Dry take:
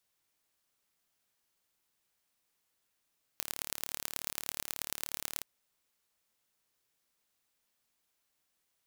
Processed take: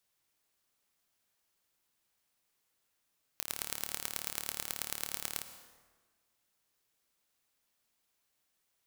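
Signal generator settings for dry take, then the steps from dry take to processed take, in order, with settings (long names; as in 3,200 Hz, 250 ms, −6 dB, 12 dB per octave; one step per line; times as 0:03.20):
impulse train 36.7 per second, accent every 4, −6 dBFS 2.03 s
dense smooth reverb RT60 1.5 s, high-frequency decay 0.65×, pre-delay 90 ms, DRR 9.5 dB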